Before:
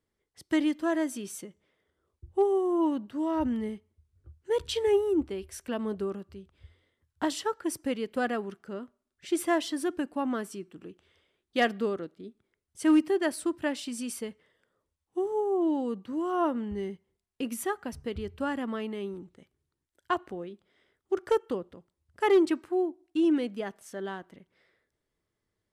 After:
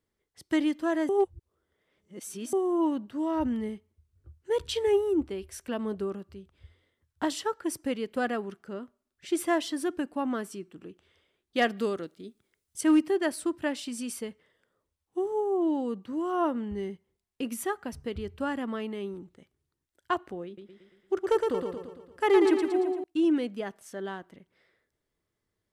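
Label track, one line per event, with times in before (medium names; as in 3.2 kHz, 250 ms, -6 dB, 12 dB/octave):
1.090000	2.530000	reverse
11.770000	12.810000	treble shelf 3.2 kHz +11 dB
20.460000	23.040000	feedback delay 114 ms, feedback 53%, level -4 dB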